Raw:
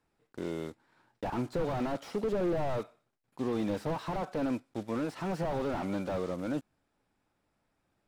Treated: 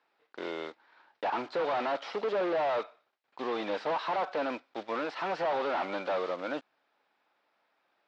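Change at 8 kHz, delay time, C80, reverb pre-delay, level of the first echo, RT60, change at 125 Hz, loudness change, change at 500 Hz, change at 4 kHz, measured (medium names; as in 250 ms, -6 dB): no reading, no echo, no reverb, no reverb, no echo, no reverb, -16.5 dB, +1.5 dB, +2.5 dB, +6.5 dB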